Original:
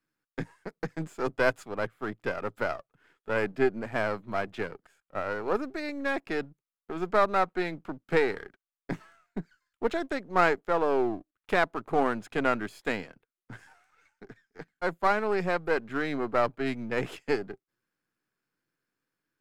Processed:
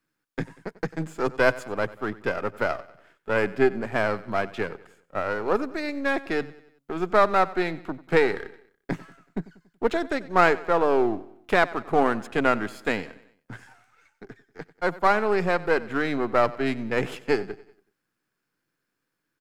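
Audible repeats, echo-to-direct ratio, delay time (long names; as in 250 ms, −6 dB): 3, −18.0 dB, 94 ms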